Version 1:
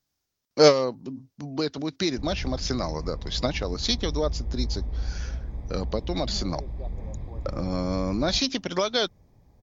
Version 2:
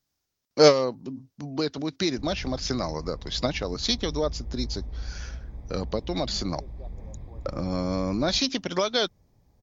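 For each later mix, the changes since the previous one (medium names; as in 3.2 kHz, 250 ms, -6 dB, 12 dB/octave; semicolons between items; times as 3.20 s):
background -5.0 dB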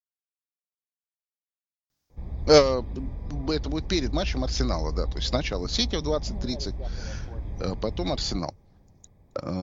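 speech: entry +1.90 s; background +5.5 dB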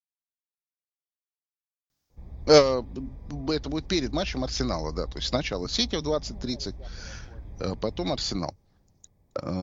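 background -7.5 dB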